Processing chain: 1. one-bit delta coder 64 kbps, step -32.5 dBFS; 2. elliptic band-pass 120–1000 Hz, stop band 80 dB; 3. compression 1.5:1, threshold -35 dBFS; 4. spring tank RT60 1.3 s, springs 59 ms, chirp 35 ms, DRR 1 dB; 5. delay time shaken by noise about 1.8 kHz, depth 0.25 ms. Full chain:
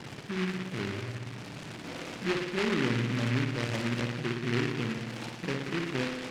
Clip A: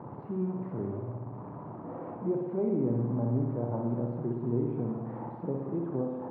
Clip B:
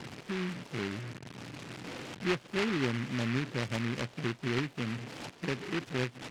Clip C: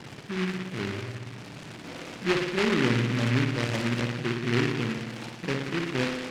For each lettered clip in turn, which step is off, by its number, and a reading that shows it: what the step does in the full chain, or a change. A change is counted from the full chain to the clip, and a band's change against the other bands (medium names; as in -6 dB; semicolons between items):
5, 1 kHz band -3.5 dB; 4, loudness change -2.5 LU; 3, momentary loudness spread change +4 LU